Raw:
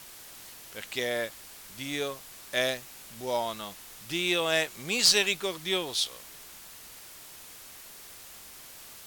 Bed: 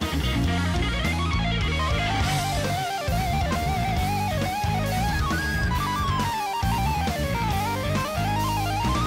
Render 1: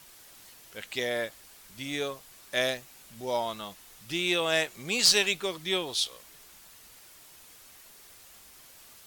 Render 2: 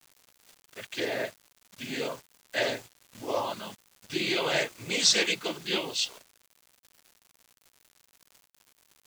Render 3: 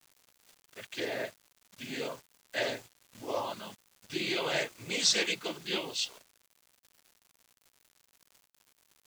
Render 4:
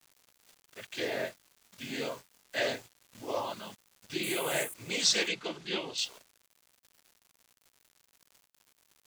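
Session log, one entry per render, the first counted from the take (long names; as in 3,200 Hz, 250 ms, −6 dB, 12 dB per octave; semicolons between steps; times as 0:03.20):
broadband denoise 6 dB, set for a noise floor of −48 dBFS
cochlear-implant simulation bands 16; bit reduction 8 bits
level −4 dB
0:00.86–0:02.76: double-tracking delay 22 ms −5 dB; 0:04.23–0:04.74: high shelf with overshoot 7,200 Hz +13.5 dB, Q 3; 0:05.28–0:05.98: high-frequency loss of the air 67 metres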